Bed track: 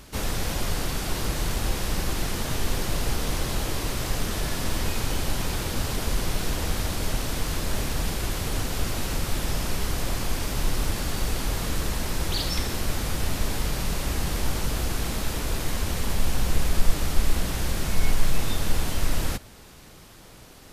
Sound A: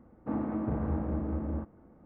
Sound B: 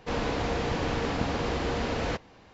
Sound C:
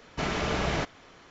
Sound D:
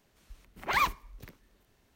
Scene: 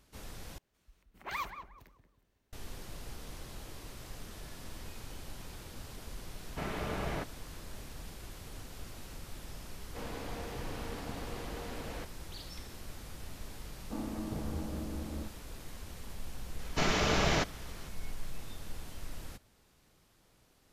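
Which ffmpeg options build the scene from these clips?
-filter_complex "[3:a]asplit=2[a][b];[0:a]volume=-19dB[c];[4:a]asplit=2[d][e];[e]adelay=181,lowpass=f=1.1k:p=1,volume=-6dB,asplit=2[f][g];[g]adelay=181,lowpass=f=1.1k:p=1,volume=0.35,asplit=2[h][i];[i]adelay=181,lowpass=f=1.1k:p=1,volume=0.35,asplit=2[j][k];[k]adelay=181,lowpass=f=1.1k:p=1,volume=0.35[l];[d][f][h][j][l]amix=inputs=5:normalize=0[m];[a]highshelf=f=3.7k:g=-12[n];[b]equalizer=f=6.1k:t=o:w=1.7:g=5.5[o];[c]asplit=2[p][q];[p]atrim=end=0.584[r];[m]atrim=end=1.95,asetpts=PTS-STARTPTS,volume=-11dB[s];[q]atrim=start=2.526[t];[n]atrim=end=1.3,asetpts=PTS-STARTPTS,volume=-7.5dB,afade=t=in:d=0.004:c=hsin,afade=t=out:st=1.296:d=0.004:c=hsin,adelay=6390[u];[2:a]atrim=end=2.53,asetpts=PTS-STARTPTS,volume=-13.5dB,afade=t=in:d=0.004:c=hsin,afade=t=out:st=2.526:d=0.004:c=hsin,adelay=9880[v];[1:a]atrim=end=2.05,asetpts=PTS-STARTPTS,volume=-7dB,afade=t=in:d=0.004:c=hsin,afade=t=out:st=2.046:d=0.004:c=hsin,adelay=601524S[w];[o]atrim=end=1.3,asetpts=PTS-STARTPTS,volume=-1dB,afade=t=in:d=0.004:c=hsin,afade=t=out:st=1.296:d=0.004:c=hsin,adelay=16590[x];[r][s]acrossfade=d=0.004:c1=hsin:c2=hsin[y];[y][t]acrossfade=d=0.004:c1=hsin:c2=hsin[z];[z][u][v][w][x]amix=inputs=5:normalize=0"

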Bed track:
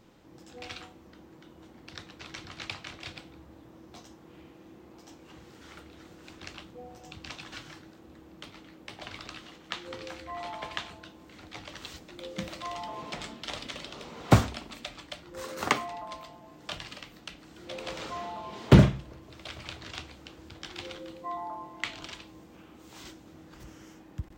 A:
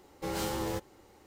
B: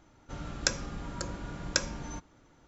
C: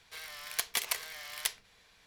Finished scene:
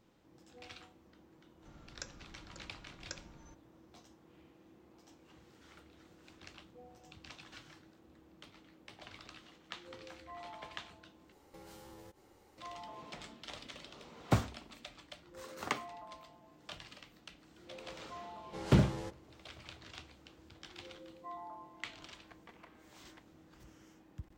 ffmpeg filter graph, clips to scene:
-filter_complex "[1:a]asplit=2[a][b];[0:a]volume=-10dB[c];[a]acompressor=threshold=-46dB:ratio=6:attack=3.2:release=140:knee=1:detection=peak[d];[b]lowpass=7.6k[e];[3:a]lowpass=1.2k[f];[c]asplit=2[g][h];[g]atrim=end=11.324[i];[d]atrim=end=1.26,asetpts=PTS-STARTPTS,volume=-5.5dB[j];[h]atrim=start=12.576[k];[2:a]atrim=end=2.67,asetpts=PTS-STARTPTS,volume=-18dB,afade=t=in:d=0.004:c=hsin,afade=t=out:st=2.666:d=0.004:c=hsin,adelay=1350[l];[e]atrim=end=1.26,asetpts=PTS-STARTPTS,volume=-9dB,afade=t=in:d=0.004:c=hsin,afade=t=out:st=1.256:d=0.004:c=hsin,adelay=18310[m];[f]atrim=end=2.06,asetpts=PTS-STARTPTS,volume=-14dB,afade=t=in:d=0.004:c=hsin,afade=t=out:st=2.056:d=0.004:c=hsin,adelay=21720[n];[i][j]acrossfade=d=0.004:c1=hsin:c2=hsin[o];[o][k]acrossfade=d=0.004:c1=hsin:c2=hsin[p];[p][l][m][n]amix=inputs=4:normalize=0"

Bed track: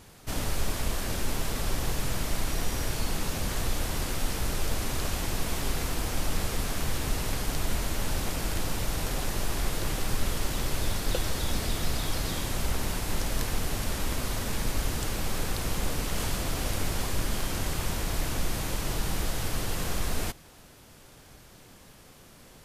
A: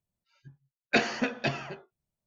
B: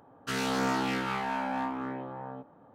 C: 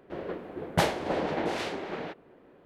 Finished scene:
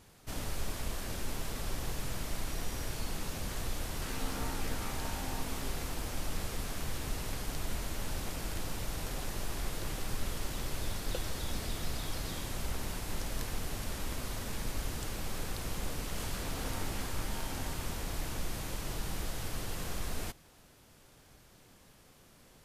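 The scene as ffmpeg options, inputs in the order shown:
-filter_complex "[2:a]asplit=2[a][b];[0:a]volume=-7.5dB[c];[a]atrim=end=2.74,asetpts=PTS-STARTPTS,volume=-13.5dB,afade=t=in:d=0.004:c=hsin,afade=t=out:st=2.736:d=0.004:c=hsin,adelay=3740[d];[b]atrim=end=2.74,asetpts=PTS-STARTPTS,volume=-16.5dB,afade=t=in:d=0.004:c=hsin,afade=t=out:st=2.736:d=0.004:c=hsin,adelay=16060[e];[c][d][e]amix=inputs=3:normalize=0"

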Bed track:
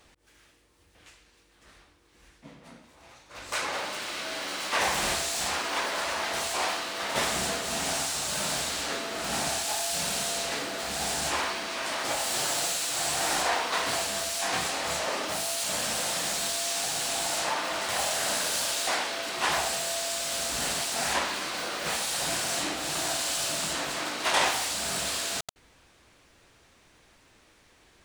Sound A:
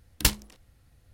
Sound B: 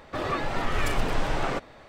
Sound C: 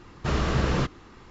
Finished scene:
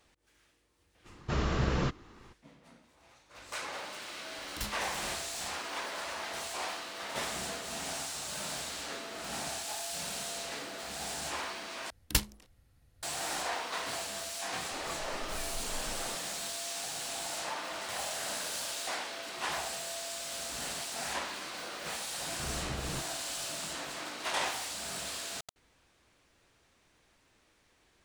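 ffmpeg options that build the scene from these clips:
-filter_complex "[3:a]asplit=2[a][b];[1:a]asplit=2[c][d];[0:a]volume=-8.5dB[e];[c]asoftclip=type=tanh:threshold=-25dB[f];[2:a]equalizer=f=110:w=1.7:g=-8[g];[e]asplit=2[h][i];[h]atrim=end=11.904[j];[d]atrim=end=1.13,asetpts=PTS-STARTPTS,volume=-5.5dB[k];[i]atrim=start=13.026[l];[a]atrim=end=1.3,asetpts=PTS-STARTPTS,volume=-5.5dB,afade=t=in:d=0.02,afade=t=out:st=1.28:d=0.02,adelay=1040[m];[f]atrim=end=1.13,asetpts=PTS-STARTPTS,volume=-7dB,afade=t=in:d=0.004:c=hsin,afade=t=out:st=1.126:d=0.004:c=hsin,adelay=4360[n];[g]atrim=end=1.88,asetpts=PTS-STARTPTS,volume=-15dB,afade=t=in:d=0.004:c=hsin,afade=t=out:st=1.876:d=0.004:c=hsin,adelay=14570[o];[b]atrim=end=1.3,asetpts=PTS-STARTPTS,volume=-15dB,afade=t=in:d=0.004:c=hsin,afade=t=out:st=1.296:d=0.004:c=hsin,adelay=22150[p];[j][k]acrossfade=d=0.004:c1=hsin:c2=hsin[q];[q][l]acrossfade=d=0.004:c1=hsin:c2=hsin[r];[r][m][n][o][p]amix=inputs=5:normalize=0"

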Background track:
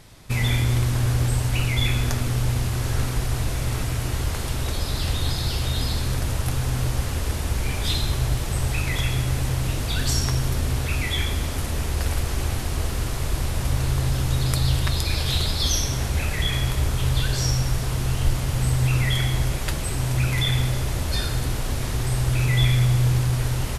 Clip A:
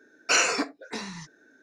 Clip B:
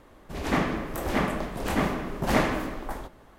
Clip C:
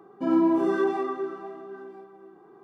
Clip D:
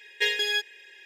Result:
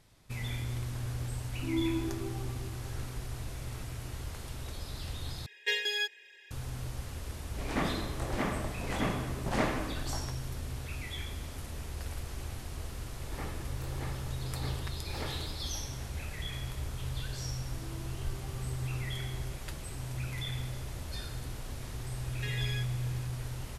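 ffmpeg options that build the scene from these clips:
-filter_complex "[3:a]asplit=2[a][b];[4:a]asplit=2[c][d];[2:a]asplit=2[e][f];[0:a]volume=-15dB[g];[a]asplit=3[h][i][j];[h]bandpass=f=300:t=q:w=8,volume=0dB[k];[i]bandpass=f=870:t=q:w=8,volume=-6dB[l];[j]bandpass=f=2.24k:t=q:w=8,volume=-9dB[m];[k][l][m]amix=inputs=3:normalize=0[n];[c]highpass=250[o];[e]aresample=22050,aresample=44100[p];[f]aecho=1:1:2.3:0.43[q];[b]acompressor=threshold=-35dB:ratio=6:attack=3.2:release=140:knee=1:detection=peak[r];[d]acompressor=threshold=-27dB:ratio=6:attack=3.2:release=140:knee=1:detection=peak[s];[g]asplit=2[t][u];[t]atrim=end=5.464[v];[o]atrim=end=1.05,asetpts=PTS-STARTPTS,volume=-5.5dB[w];[u]atrim=start=6.506[x];[n]atrim=end=2.63,asetpts=PTS-STARTPTS,volume=-5dB,afade=t=in:d=0.004:c=hsin,afade=t=out:st=2.626:d=0.004:c=hsin,adelay=1410[y];[p]atrim=end=3.38,asetpts=PTS-STARTPTS,volume=-7dB,afade=t=in:d=0.004:c=hsin,afade=t=out:st=3.376:d=0.004:c=hsin,adelay=7240[z];[q]atrim=end=3.38,asetpts=PTS-STARTPTS,volume=-18dB,afade=t=in:d=0.004:c=hsin,afade=t=out:st=3.376:d=0.004:c=hsin,adelay=12860[aa];[r]atrim=end=2.63,asetpts=PTS-STARTPTS,volume=-14.5dB,afade=t=in:d=0.004:c=hsin,afade=t=out:st=2.626:d=0.004:c=hsin,adelay=17500[ab];[s]atrim=end=1.05,asetpts=PTS-STARTPTS,volume=-10.5dB,afade=t=in:d=0.004:c=hsin,afade=t=out:st=1.046:d=0.004:c=hsin,adelay=22220[ac];[v][w]acrossfade=d=0.004:c1=hsin:c2=hsin[ad];[ad][x]acrossfade=d=0.004:c1=hsin:c2=hsin[ae];[ae][y][z][aa][ab][ac]amix=inputs=6:normalize=0"

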